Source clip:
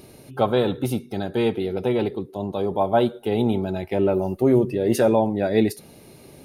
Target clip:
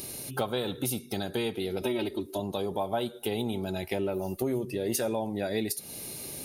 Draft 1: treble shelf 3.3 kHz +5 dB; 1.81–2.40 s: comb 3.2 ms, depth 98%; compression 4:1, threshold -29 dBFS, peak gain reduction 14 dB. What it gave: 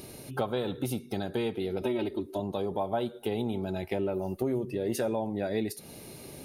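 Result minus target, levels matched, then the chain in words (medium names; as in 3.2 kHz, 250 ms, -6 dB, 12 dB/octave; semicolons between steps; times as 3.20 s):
8 kHz band -8.5 dB
treble shelf 3.3 kHz +17 dB; 1.81–2.40 s: comb 3.2 ms, depth 98%; compression 4:1, threshold -29 dBFS, peak gain reduction 14 dB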